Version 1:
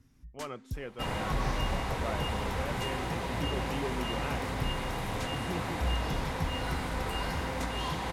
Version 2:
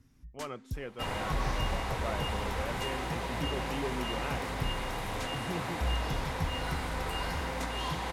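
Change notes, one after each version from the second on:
second sound: add low-shelf EQ 200 Hz −8.5 dB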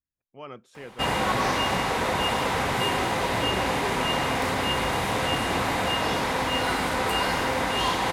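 first sound: muted
second sound +11.0 dB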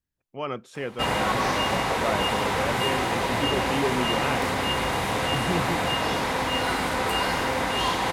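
speech +9.5 dB

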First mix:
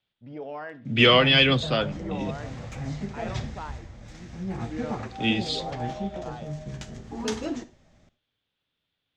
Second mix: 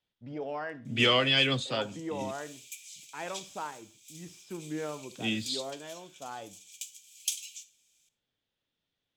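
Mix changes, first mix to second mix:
second voice −8.0 dB
background: add Chebyshev high-pass with heavy ripple 2,300 Hz, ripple 6 dB
master: remove high-frequency loss of the air 120 metres

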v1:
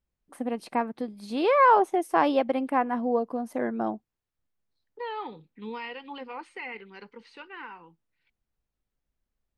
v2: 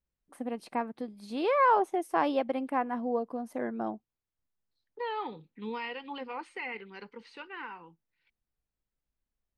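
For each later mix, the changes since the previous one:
first voice −5.0 dB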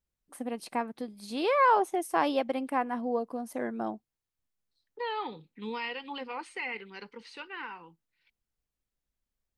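master: add high-shelf EQ 3,700 Hz +10.5 dB

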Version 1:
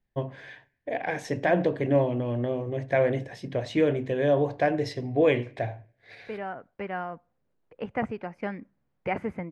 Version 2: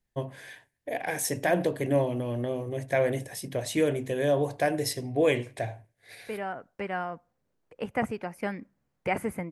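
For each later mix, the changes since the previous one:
first voice: send −10.5 dB
master: remove high-frequency loss of the air 200 metres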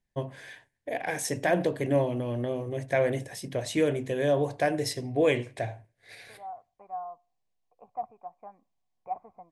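second voice: add formant resonators in series a
master: add low-pass filter 8,900 Hz 12 dB per octave

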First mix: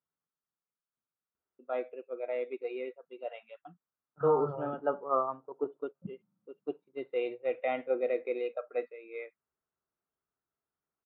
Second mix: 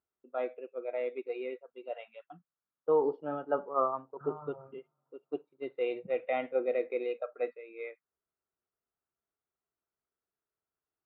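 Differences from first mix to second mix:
first voice: entry −1.35 s
second voice −10.0 dB

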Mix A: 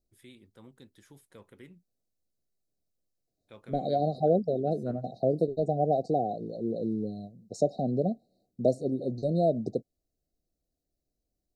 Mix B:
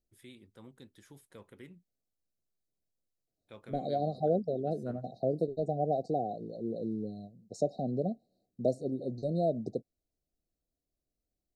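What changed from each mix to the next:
second voice −4.5 dB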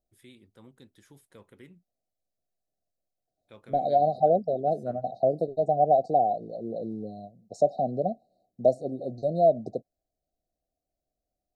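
second voice: add flat-topped bell 1,200 Hz +12.5 dB 2.3 octaves

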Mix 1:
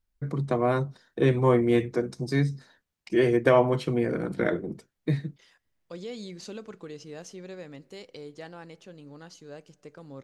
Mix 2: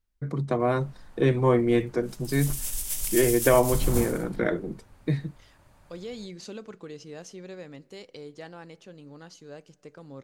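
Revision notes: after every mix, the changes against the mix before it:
background: unmuted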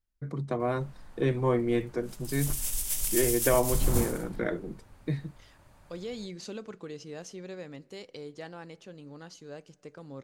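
first voice −5.0 dB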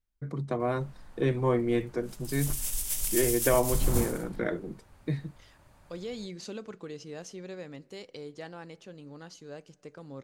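background: send −6.5 dB

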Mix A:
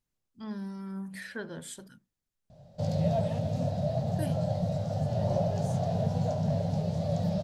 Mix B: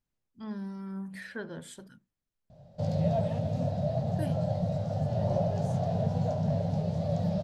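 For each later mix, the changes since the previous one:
master: add high-shelf EQ 4,400 Hz −7.5 dB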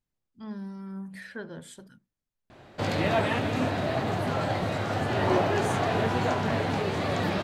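background: remove drawn EQ curve 110 Hz 0 dB, 160 Hz +7 dB, 350 Hz −24 dB, 590 Hz +1 dB, 1,100 Hz −23 dB, 2,300 Hz −25 dB, 5,300 Hz −9 dB, 8,800 Hz −16 dB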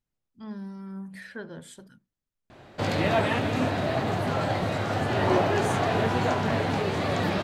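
reverb: on

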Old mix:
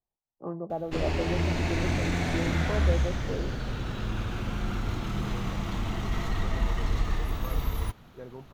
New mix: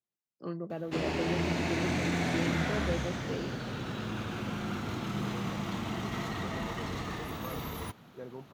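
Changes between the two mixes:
first voice: remove low-pass with resonance 850 Hz, resonance Q 3.6
master: add Chebyshev high-pass filter 160 Hz, order 2

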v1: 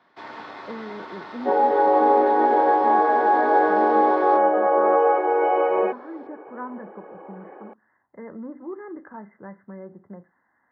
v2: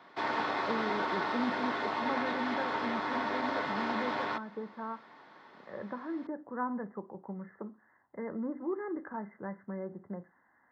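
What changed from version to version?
first sound +6.0 dB
second sound: muted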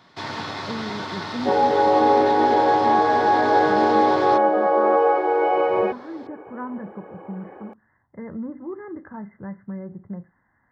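second sound: unmuted
master: remove three-way crossover with the lows and the highs turned down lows −19 dB, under 240 Hz, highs −14 dB, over 2,700 Hz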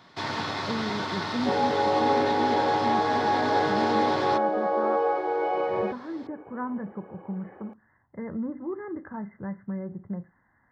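second sound −7.0 dB

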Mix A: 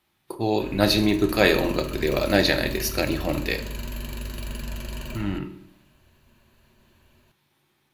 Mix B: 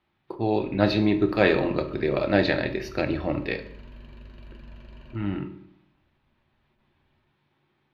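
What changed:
background −11.5 dB
master: add high-frequency loss of the air 290 metres

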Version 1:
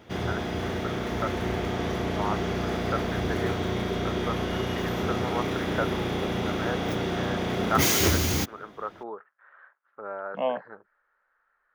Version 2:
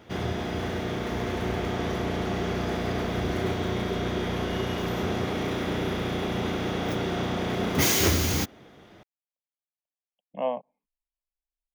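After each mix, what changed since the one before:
first voice: muted
second voice: add high-frequency loss of the air 260 metres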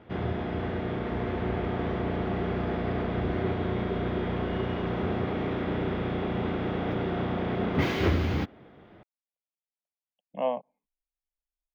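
background: add high-frequency loss of the air 400 metres

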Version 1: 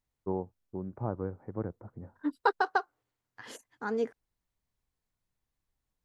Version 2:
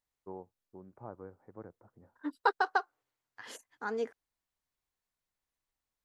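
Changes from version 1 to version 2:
first voice −7.5 dB
master: add low-shelf EQ 300 Hz −11 dB

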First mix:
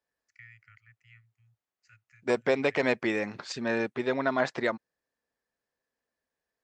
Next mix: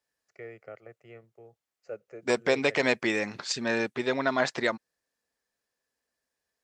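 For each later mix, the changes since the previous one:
first voice: remove elliptic band-stop filter 110–1,700 Hz, stop band 50 dB
second voice: add high-shelf EQ 3,400 Hz +11 dB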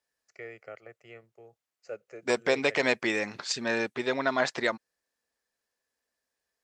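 first voice: add high-shelf EQ 2,200 Hz +9 dB
master: add parametric band 140 Hz −3.5 dB 2.4 octaves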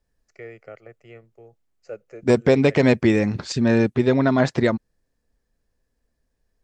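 second voice: remove high-pass filter 680 Hz 6 dB per octave
master: add low-shelf EQ 430 Hz +10 dB

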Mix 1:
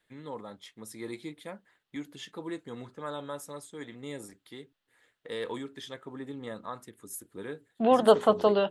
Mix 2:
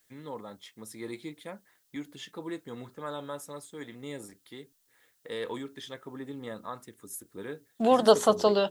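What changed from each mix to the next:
second voice: remove low-pass filter 3,300 Hz 24 dB per octave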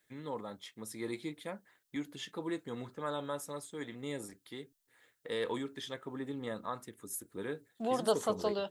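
second voice −10.5 dB

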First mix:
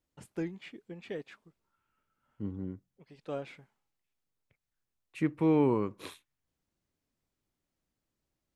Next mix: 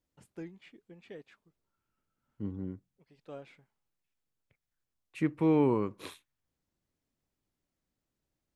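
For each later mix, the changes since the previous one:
first voice −8.0 dB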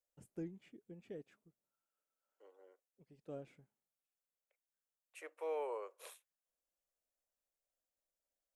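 second voice: add Butterworth high-pass 510 Hz 48 dB per octave
master: add graphic EQ with 10 bands 1,000 Hz −9 dB, 2,000 Hz −7 dB, 4,000 Hz −11 dB

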